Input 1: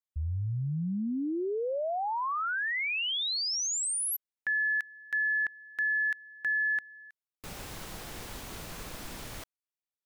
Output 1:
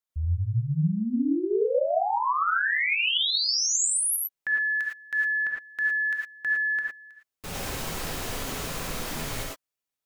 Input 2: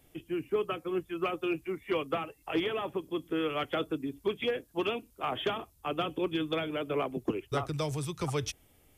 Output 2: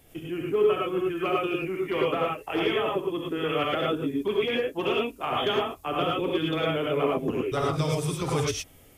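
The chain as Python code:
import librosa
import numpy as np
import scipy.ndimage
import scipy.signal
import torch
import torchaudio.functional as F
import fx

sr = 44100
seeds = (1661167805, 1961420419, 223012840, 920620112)

p1 = fx.level_steps(x, sr, step_db=22)
p2 = x + (p1 * librosa.db_to_amplitude(1.0))
y = fx.rev_gated(p2, sr, seeds[0], gate_ms=130, shape='rising', drr_db=-2.5)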